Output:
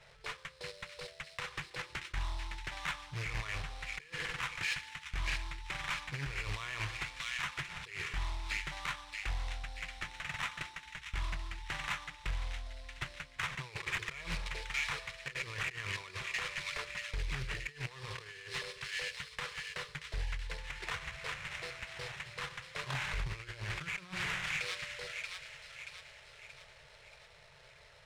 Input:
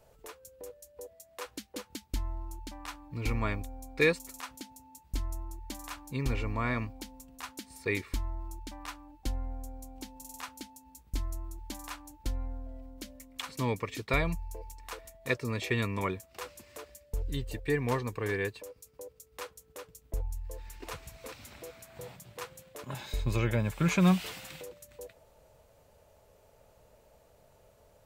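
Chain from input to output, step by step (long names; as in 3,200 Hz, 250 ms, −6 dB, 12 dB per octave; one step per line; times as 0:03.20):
low shelf with overshoot 280 Hz −10.5 dB, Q 3
convolution reverb RT60 1.1 s, pre-delay 3 ms, DRR 13.5 dB
sample-rate reduction 4,700 Hz, jitter 20%
delay with a high-pass on its return 630 ms, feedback 49%, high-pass 2,000 Hz, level −10 dB
compressor whose output falls as the input rises −39 dBFS, ratio −1
drawn EQ curve 100 Hz 0 dB, 150 Hz +7 dB, 270 Hz −23 dB, 540 Hz −16 dB, 2,000 Hz +4 dB, 9,500 Hz −9 dB, 14,000 Hz −24 dB
soft clipping −30.5 dBFS, distortion −19 dB
highs frequency-modulated by the lows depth 0.5 ms
level +4.5 dB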